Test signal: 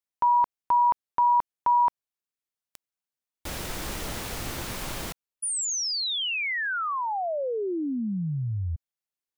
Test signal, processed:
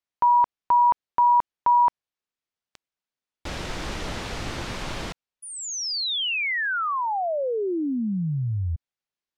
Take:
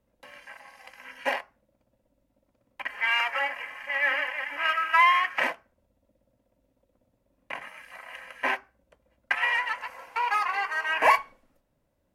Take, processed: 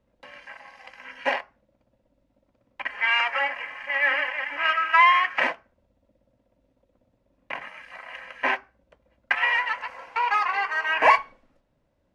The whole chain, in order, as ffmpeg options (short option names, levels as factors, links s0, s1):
-af "lowpass=5200,volume=1.41"